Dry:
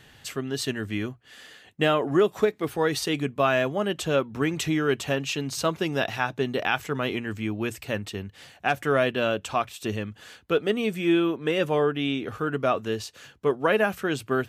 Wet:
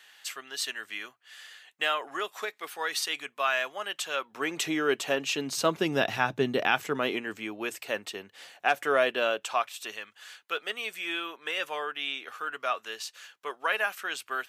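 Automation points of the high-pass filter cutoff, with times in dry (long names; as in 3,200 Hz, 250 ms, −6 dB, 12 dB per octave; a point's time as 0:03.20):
0:04.16 1,100 Hz
0:04.61 370 Hz
0:05.12 370 Hz
0:06.31 110 Hz
0:07.48 460 Hz
0:09.16 460 Hz
0:10.01 1,100 Hz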